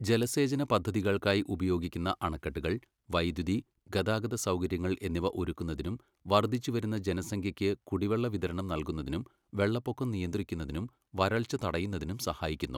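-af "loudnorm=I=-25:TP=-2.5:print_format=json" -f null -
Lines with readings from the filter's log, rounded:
"input_i" : "-32.8",
"input_tp" : "-9.8",
"input_lra" : "1.9",
"input_thresh" : "-42.9",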